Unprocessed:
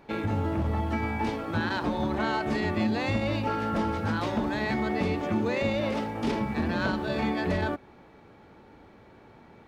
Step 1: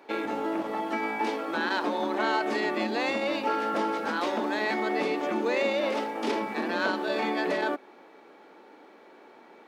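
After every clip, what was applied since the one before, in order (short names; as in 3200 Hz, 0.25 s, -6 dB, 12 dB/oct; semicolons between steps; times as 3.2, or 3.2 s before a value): HPF 290 Hz 24 dB/oct; gain +2.5 dB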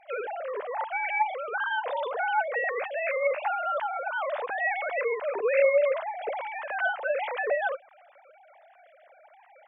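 sine-wave speech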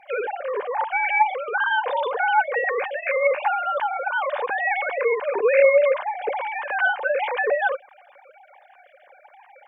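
notch comb 660 Hz; gain +7.5 dB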